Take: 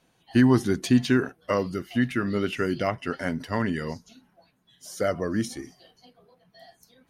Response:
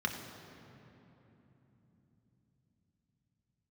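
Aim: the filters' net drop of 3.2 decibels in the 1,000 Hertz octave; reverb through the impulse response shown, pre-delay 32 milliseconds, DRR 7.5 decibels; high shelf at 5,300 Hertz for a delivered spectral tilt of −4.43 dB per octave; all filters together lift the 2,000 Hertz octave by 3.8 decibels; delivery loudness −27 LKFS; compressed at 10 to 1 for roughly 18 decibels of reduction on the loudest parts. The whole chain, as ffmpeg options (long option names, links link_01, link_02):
-filter_complex "[0:a]equalizer=frequency=1000:width_type=o:gain=-7.5,equalizer=frequency=2000:width_type=o:gain=6.5,highshelf=frequency=5300:gain=6.5,acompressor=threshold=-33dB:ratio=10,asplit=2[link_01][link_02];[1:a]atrim=start_sample=2205,adelay=32[link_03];[link_02][link_03]afir=irnorm=-1:irlink=0,volume=-13.5dB[link_04];[link_01][link_04]amix=inputs=2:normalize=0,volume=10.5dB"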